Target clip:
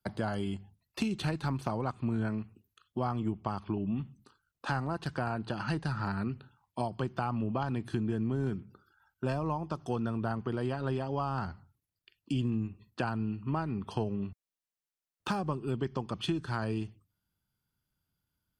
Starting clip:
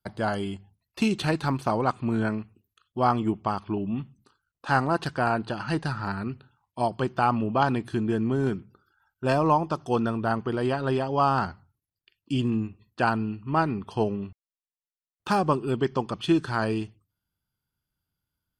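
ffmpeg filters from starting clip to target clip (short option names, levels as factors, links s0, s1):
-filter_complex "[0:a]equalizer=f=200:w=1.4:g=2.5,acrossover=split=110[s0][s1];[s1]acompressor=threshold=0.0282:ratio=6[s2];[s0][s2]amix=inputs=2:normalize=0"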